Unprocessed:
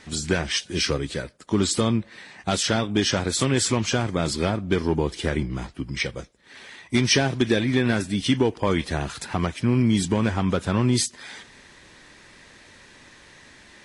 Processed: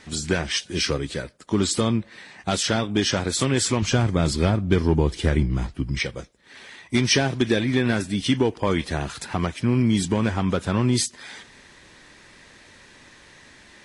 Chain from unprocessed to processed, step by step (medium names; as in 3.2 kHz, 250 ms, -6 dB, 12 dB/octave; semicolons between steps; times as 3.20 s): 3.82–5.99 s: bass shelf 140 Hz +11 dB